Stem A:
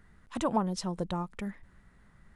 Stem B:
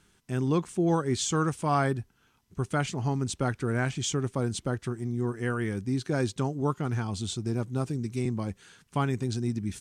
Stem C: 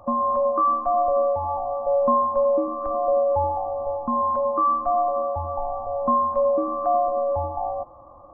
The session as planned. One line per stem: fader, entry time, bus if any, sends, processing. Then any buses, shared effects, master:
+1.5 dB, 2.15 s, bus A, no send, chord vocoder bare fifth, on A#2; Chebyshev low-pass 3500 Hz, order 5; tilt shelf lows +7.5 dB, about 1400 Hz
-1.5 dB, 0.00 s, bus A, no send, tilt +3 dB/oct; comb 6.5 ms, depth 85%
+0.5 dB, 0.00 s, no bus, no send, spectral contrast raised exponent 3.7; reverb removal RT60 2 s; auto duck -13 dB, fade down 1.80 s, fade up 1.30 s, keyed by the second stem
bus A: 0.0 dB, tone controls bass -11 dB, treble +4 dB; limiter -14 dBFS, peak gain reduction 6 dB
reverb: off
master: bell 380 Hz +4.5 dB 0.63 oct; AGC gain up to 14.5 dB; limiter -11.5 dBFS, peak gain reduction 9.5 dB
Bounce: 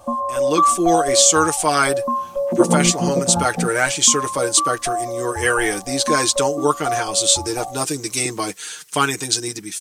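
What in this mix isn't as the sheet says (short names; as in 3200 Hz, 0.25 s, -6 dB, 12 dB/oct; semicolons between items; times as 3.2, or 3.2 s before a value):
stem C: missing spectral contrast raised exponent 3.7; master: missing limiter -11.5 dBFS, peak gain reduction 9.5 dB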